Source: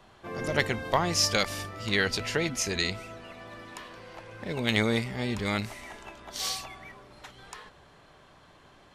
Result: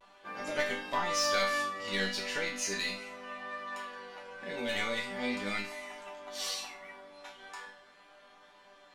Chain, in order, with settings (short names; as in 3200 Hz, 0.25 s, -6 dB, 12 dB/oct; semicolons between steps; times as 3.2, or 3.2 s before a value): overdrive pedal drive 15 dB, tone 4900 Hz, clips at -10.5 dBFS; resonator bank G3 major, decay 0.39 s; vibrato 0.39 Hz 27 cents; gain +8 dB